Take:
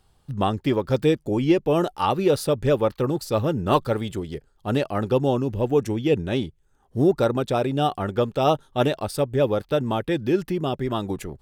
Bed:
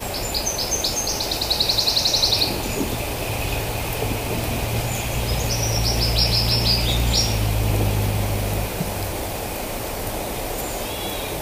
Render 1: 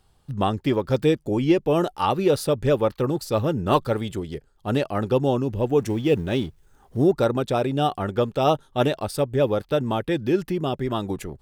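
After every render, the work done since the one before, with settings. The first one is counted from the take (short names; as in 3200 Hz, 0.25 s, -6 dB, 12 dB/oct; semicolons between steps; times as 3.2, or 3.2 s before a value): 5.8–6.97 G.711 law mismatch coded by mu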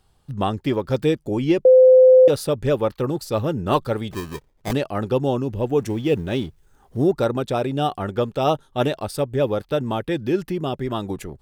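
1.65–2.28 bleep 514 Hz -7 dBFS; 4.11–4.73 sample-rate reducer 1400 Hz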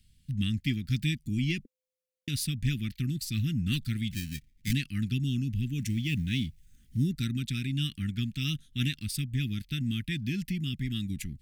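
elliptic band-stop 240–2100 Hz, stop band 50 dB; dynamic EQ 330 Hz, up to -4 dB, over -39 dBFS, Q 0.89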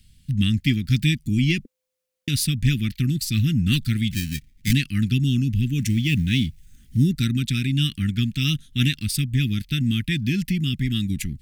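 gain +9 dB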